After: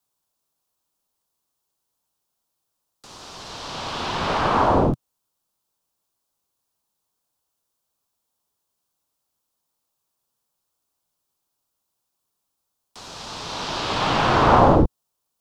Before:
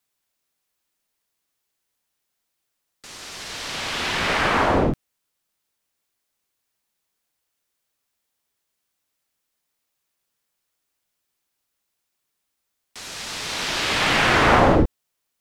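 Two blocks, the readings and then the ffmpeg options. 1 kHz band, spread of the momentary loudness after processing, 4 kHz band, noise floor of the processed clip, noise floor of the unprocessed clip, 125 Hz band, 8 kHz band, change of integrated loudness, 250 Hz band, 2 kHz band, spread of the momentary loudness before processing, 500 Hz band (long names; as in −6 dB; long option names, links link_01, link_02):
+2.5 dB, 22 LU, −4.5 dB, −79 dBFS, −78 dBFS, +2.0 dB, −7.0 dB, 0.0 dB, +0.5 dB, −7.0 dB, 19 LU, +1.0 dB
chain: -filter_complex "[0:a]equalizer=frequency=125:width_type=o:width=1:gain=3,equalizer=frequency=1000:width_type=o:width=1:gain=6,equalizer=frequency=2000:width_type=o:width=1:gain=-12,acrossover=split=210|610|5900[link_01][link_02][link_03][link_04];[link_04]acompressor=threshold=-57dB:ratio=6[link_05];[link_01][link_02][link_03][link_05]amix=inputs=4:normalize=0"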